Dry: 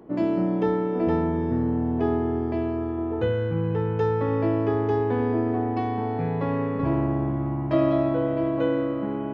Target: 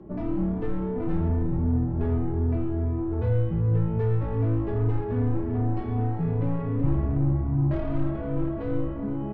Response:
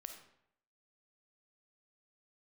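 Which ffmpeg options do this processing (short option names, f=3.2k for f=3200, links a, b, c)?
-filter_complex "[0:a]aeval=exprs='(tanh(15.8*val(0)+0.15)-tanh(0.15))/15.8':c=same,acrossover=split=130|3000[a][b][c];[b]acompressor=threshold=-32dB:ratio=2[d];[a][d][c]amix=inputs=3:normalize=0,aemphasis=mode=reproduction:type=riaa,asplit=2[e][f];[f]adelay=3.3,afreqshift=2.6[g];[e][g]amix=inputs=2:normalize=1"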